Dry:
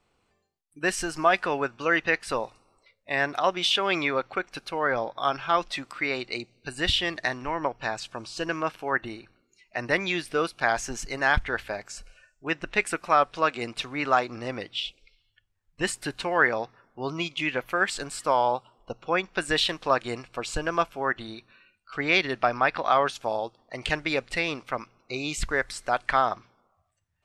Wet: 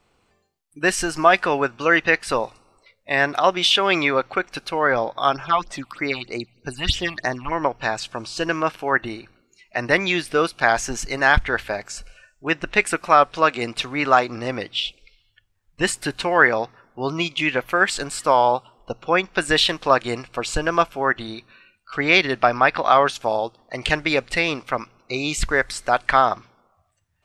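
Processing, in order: 5.33–7.52 phaser stages 6, 3.2 Hz, lowest notch 400–3900 Hz; gain +6.5 dB

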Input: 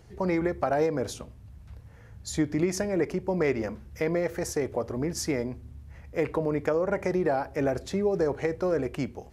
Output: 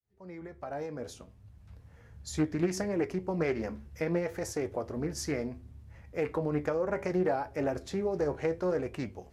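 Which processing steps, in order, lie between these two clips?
opening faded in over 1.97 s; flange 0.67 Hz, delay 9.2 ms, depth 5.1 ms, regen +63%; Doppler distortion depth 0.27 ms

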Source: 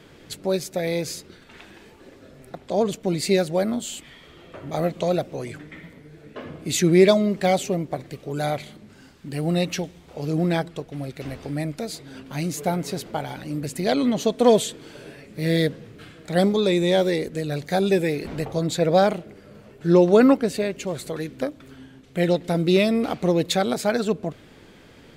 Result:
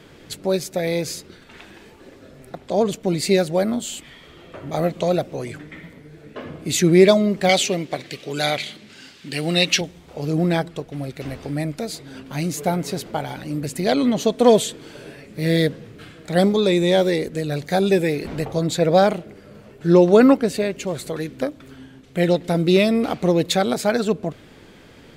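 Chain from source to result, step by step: 7.49–9.81 weighting filter D; gain +2.5 dB

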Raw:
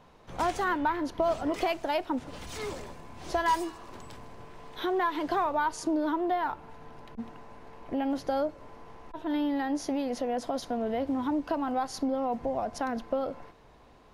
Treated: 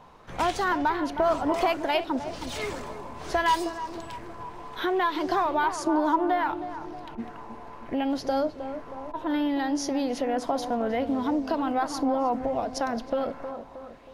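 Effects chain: on a send: tape echo 0.315 s, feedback 57%, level -8.5 dB, low-pass 1300 Hz; on the sum: LFO bell 0.66 Hz 900–5600 Hz +7 dB; gain +2.5 dB

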